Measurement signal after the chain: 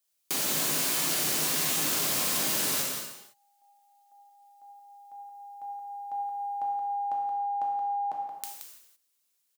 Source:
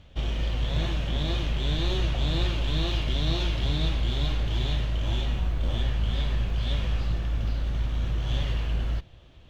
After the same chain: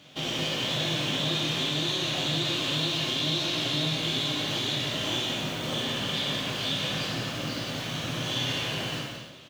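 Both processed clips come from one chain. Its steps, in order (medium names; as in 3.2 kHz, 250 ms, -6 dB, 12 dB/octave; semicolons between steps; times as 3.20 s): high-pass 150 Hz 24 dB/octave; treble shelf 3.4 kHz +11.5 dB; compression 10:1, threshold -31 dBFS; delay 175 ms -7.5 dB; gated-style reverb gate 360 ms falling, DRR -1.5 dB; trim +2 dB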